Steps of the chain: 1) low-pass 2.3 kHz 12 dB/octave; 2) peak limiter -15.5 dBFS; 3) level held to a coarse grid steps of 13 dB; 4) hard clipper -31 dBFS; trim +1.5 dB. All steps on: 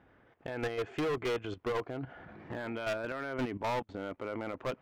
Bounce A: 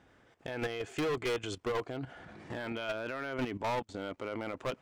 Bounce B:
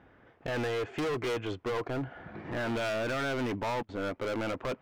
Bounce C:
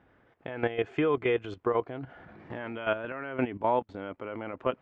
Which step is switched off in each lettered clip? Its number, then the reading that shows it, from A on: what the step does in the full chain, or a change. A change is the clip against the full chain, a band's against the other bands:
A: 1, 8 kHz band +5.0 dB; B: 3, crest factor change -3.0 dB; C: 4, distortion -6 dB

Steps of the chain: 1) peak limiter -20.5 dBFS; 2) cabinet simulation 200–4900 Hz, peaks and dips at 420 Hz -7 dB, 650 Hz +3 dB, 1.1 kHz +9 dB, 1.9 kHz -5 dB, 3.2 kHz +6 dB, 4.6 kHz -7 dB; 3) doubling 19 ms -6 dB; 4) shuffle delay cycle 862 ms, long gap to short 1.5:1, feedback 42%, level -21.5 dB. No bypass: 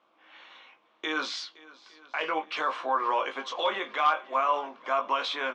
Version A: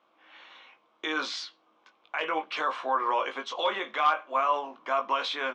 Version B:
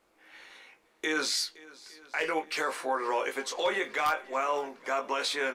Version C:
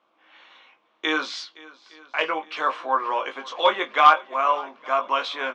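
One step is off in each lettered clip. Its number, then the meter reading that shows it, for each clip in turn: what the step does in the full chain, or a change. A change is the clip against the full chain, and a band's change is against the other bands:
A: 4, echo-to-direct -19.0 dB to none; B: 2, momentary loudness spread change +4 LU; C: 1, mean gain reduction 2.0 dB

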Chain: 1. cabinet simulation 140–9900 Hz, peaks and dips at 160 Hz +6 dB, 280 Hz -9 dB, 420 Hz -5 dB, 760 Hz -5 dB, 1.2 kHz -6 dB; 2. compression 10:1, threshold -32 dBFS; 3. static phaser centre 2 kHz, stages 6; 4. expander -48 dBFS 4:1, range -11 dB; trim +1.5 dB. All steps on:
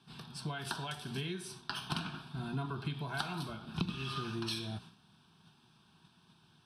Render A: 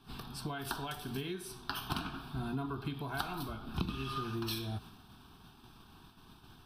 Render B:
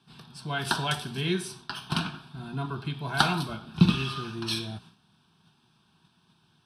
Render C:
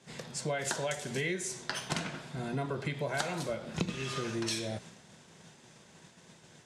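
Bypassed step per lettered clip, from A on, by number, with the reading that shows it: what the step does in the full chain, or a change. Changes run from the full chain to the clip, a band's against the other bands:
1, 4 kHz band -2.5 dB; 2, mean gain reduction 6.0 dB; 3, 8 kHz band +9.5 dB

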